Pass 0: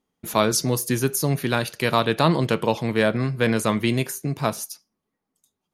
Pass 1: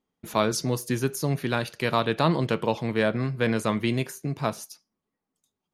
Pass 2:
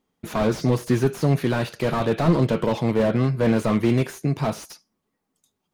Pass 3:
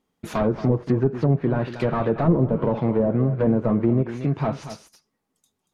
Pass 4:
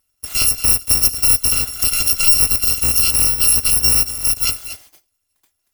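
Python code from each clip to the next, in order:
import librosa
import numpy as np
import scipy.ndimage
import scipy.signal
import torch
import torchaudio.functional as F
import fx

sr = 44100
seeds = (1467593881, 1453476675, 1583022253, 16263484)

y1 = fx.high_shelf(x, sr, hz=8300.0, db=-10.0)
y1 = y1 * librosa.db_to_amplitude(-3.5)
y2 = fx.slew_limit(y1, sr, full_power_hz=34.0)
y2 = y2 * librosa.db_to_amplitude(7.0)
y3 = y2 + 10.0 ** (-12.5 / 20.0) * np.pad(y2, (int(232 * sr / 1000.0), 0))[:len(y2)]
y3 = fx.env_lowpass_down(y3, sr, base_hz=720.0, full_db=-15.5)
y4 = fx.bit_reversed(y3, sr, seeds[0], block=256)
y4 = y4 * librosa.db_to_amplitude(5.5)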